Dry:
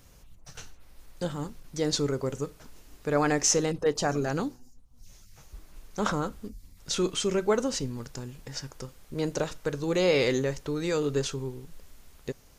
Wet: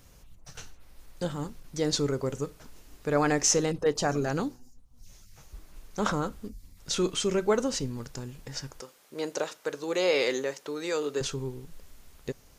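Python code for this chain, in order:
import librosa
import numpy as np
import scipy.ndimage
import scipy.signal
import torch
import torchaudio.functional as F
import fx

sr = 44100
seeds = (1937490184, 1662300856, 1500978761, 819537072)

y = fx.highpass(x, sr, hz=380.0, slope=12, at=(8.8, 11.21))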